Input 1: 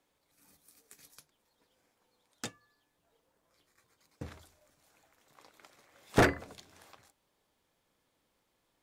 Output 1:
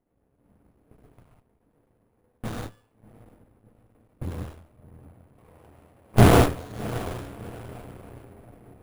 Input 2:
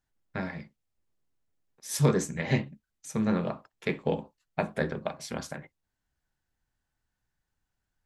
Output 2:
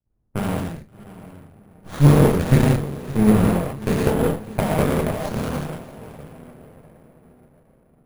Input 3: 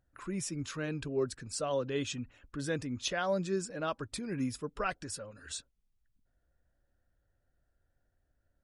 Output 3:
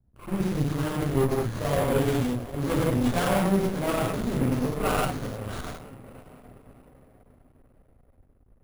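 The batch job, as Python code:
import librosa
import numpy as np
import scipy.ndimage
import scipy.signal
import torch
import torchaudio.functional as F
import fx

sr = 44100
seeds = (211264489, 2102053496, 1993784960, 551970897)

y = fx.tracing_dist(x, sr, depth_ms=0.2)
y = fx.low_shelf(y, sr, hz=170.0, db=5.0)
y = fx.echo_diffused(y, sr, ms=692, feedback_pct=45, wet_db=-15)
y = fx.rev_gated(y, sr, seeds[0], gate_ms=230, shape='flat', drr_db=-7.0)
y = fx.env_lowpass(y, sr, base_hz=620.0, full_db=-29.0)
y = (np.kron(scipy.signal.resample_poly(y, 1, 4), np.eye(4)[0]) * 4)[:len(y)]
y = fx.bass_treble(y, sr, bass_db=7, treble_db=3)
y = fx.running_max(y, sr, window=17)
y = y * 10.0 ** (-9.5 / 20.0)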